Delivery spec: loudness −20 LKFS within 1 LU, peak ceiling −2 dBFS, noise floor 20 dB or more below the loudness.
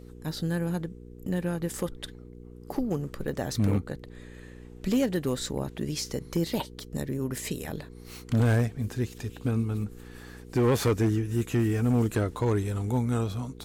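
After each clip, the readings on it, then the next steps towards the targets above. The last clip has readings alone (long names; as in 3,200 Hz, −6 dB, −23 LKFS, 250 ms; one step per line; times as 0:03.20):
share of clipped samples 1.0%; peaks flattened at −18.5 dBFS; mains hum 60 Hz; hum harmonics up to 480 Hz; level of the hum −46 dBFS; integrated loudness −29.0 LKFS; sample peak −18.5 dBFS; target loudness −20.0 LKFS
→ clipped peaks rebuilt −18.5 dBFS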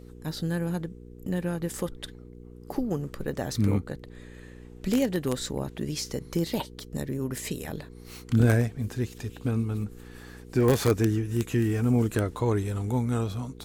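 share of clipped samples 0.0%; mains hum 60 Hz; hum harmonics up to 420 Hz; level of the hum −47 dBFS
→ hum removal 60 Hz, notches 7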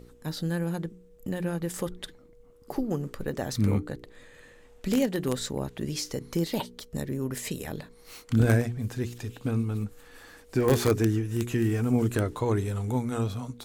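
mains hum none found; integrated loudness −29.0 LKFS; sample peak −8.0 dBFS; target loudness −20.0 LKFS
→ level +9 dB
brickwall limiter −2 dBFS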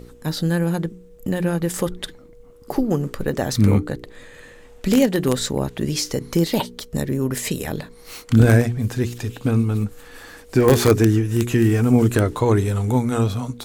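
integrated loudness −20.5 LKFS; sample peak −2.0 dBFS; background noise floor −46 dBFS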